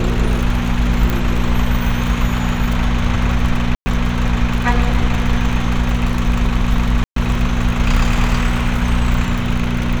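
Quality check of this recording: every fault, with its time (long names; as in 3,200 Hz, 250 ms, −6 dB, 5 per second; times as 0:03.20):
surface crackle 36 per second −20 dBFS
mains hum 60 Hz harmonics 4 −20 dBFS
0:01.10: click
0:03.75–0:03.86: drop-out 110 ms
0:07.04–0:07.16: drop-out 123 ms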